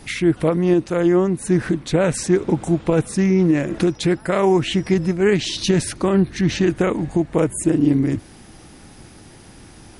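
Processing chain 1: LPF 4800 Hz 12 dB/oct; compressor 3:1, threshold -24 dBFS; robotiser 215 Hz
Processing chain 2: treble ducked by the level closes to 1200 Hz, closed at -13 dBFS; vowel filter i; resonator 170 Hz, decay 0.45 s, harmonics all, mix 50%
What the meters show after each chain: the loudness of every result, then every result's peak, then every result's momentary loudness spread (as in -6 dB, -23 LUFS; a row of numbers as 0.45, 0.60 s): -29.5, -35.5 LUFS; -11.5, -17.5 dBFS; 20, 10 LU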